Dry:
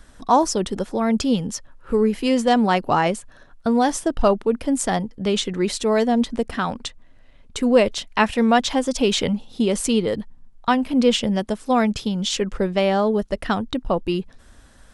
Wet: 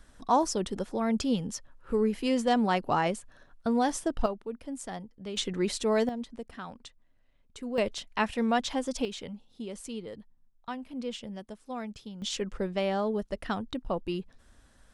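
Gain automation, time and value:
-8 dB
from 4.26 s -17 dB
from 5.37 s -7 dB
from 6.09 s -17.5 dB
from 7.78 s -10 dB
from 9.05 s -19 dB
from 12.22 s -10 dB

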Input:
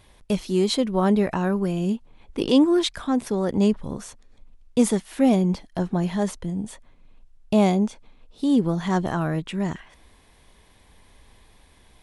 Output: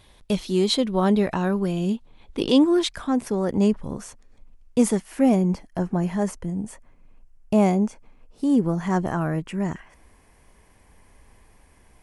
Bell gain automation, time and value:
bell 3700 Hz 0.46 oct
2.4 s +4.5 dB
3.22 s -6.5 dB
4.89 s -6.5 dB
5.48 s -14.5 dB

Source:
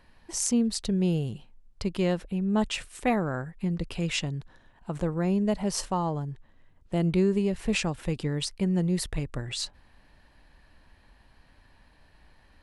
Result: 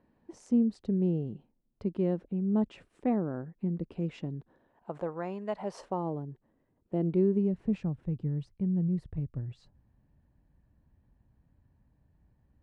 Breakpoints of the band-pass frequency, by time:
band-pass, Q 1.1
4.33 s 280 Hz
5.43 s 1200 Hz
6.07 s 330 Hz
7.14 s 330 Hz
8.07 s 120 Hz

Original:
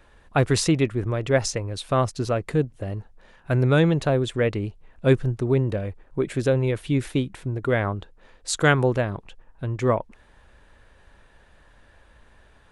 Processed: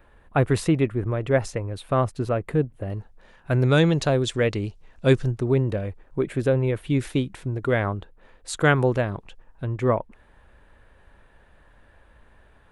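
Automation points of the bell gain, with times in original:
bell 5700 Hz 1.4 oct
-13 dB
from 2.9 s -1.5 dB
from 3.63 s +8 dB
from 5.31 s -1.5 dB
from 6.23 s -9.5 dB
from 6.9 s 0 dB
from 7.97 s -8 dB
from 8.76 s -1 dB
from 9.65 s -10 dB

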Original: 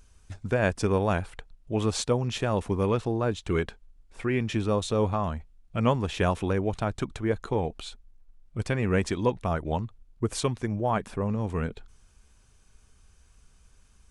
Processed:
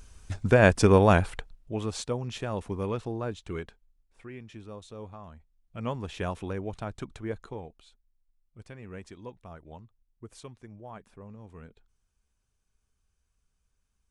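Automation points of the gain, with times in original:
1.33 s +6 dB
1.81 s -6 dB
3.22 s -6 dB
4.43 s -17.5 dB
5.27 s -17.5 dB
6.01 s -7.5 dB
7.36 s -7.5 dB
7.81 s -18 dB

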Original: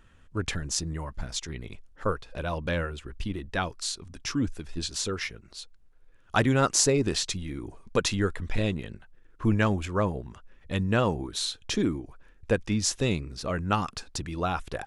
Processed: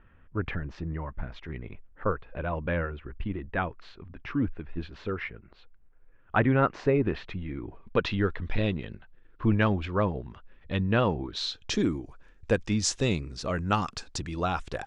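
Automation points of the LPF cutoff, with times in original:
LPF 24 dB/oct
7.3 s 2400 Hz
8.45 s 4100 Hz
11.26 s 4100 Hz
11.84 s 8100 Hz

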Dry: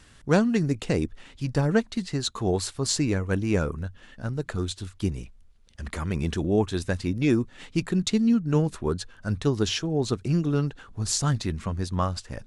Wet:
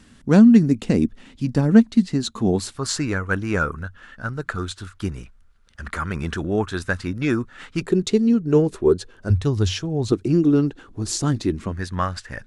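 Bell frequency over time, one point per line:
bell +13.5 dB 0.81 oct
230 Hz
from 2.77 s 1400 Hz
from 7.81 s 390 Hz
from 9.3 s 91 Hz
from 10.12 s 320 Hz
from 11.72 s 1700 Hz

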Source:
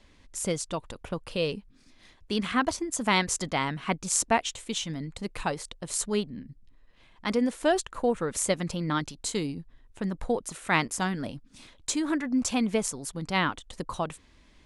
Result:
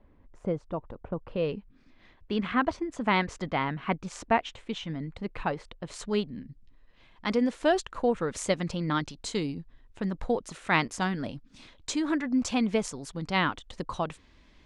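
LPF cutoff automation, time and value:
1.18 s 1000 Hz
1.58 s 2500 Hz
5.73 s 2500 Hz
6.27 s 5500 Hz

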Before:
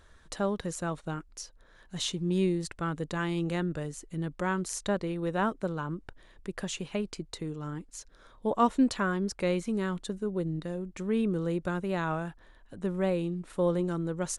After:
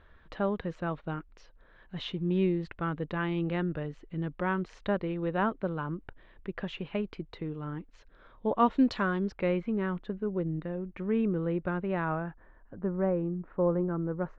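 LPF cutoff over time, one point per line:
LPF 24 dB/oct
8.54 s 3100 Hz
9.01 s 5100 Hz
9.52 s 2600 Hz
11.9 s 2600 Hz
12.76 s 1600 Hz

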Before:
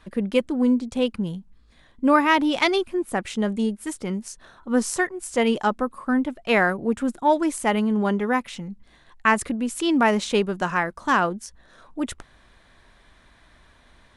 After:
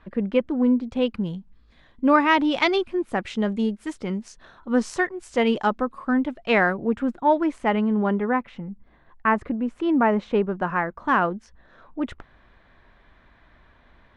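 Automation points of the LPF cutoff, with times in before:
0.75 s 2300 Hz
1.22 s 4500 Hz
6.62 s 4500 Hz
7.07 s 2500 Hz
7.81 s 2500 Hz
8.7 s 1500 Hz
10.46 s 1500 Hz
11.29 s 2500 Hz

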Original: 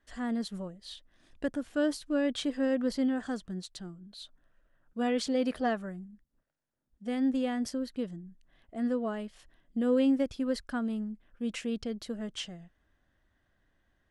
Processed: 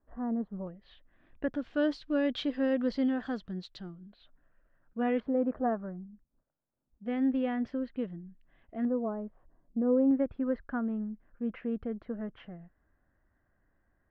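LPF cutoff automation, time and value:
LPF 24 dB/oct
1100 Hz
from 0.67 s 2400 Hz
from 1.53 s 4200 Hz
from 4.1 s 2400 Hz
from 5.2 s 1300 Hz
from 7.06 s 2700 Hz
from 8.85 s 1100 Hz
from 10.11 s 1800 Hz

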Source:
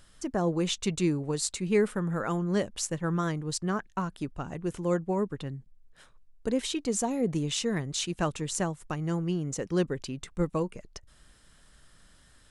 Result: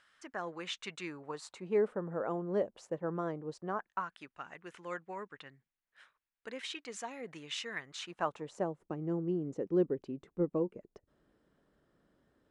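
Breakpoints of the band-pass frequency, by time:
band-pass, Q 1.4
1.04 s 1700 Hz
1.9 s 550 Hz
3.58 s 550 Hz
4.14 s 1900 Hz
7.82 s 1900 Hz
8.83 s 370 Hz

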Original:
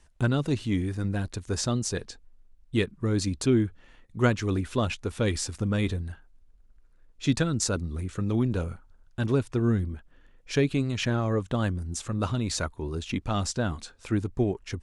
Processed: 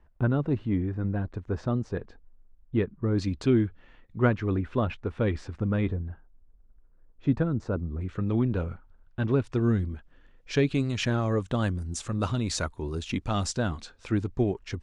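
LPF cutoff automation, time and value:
1400 Hz
from 3.18 s 3300 Hz
from 4.19 s 1900 Hz
from 5.89 s 1100 Hz
from 8.01 s 2700 Hz
from 9.44 s 5600 Hz
from 10.75 s 9500 Hz
from 13.69 s 5800 Hz

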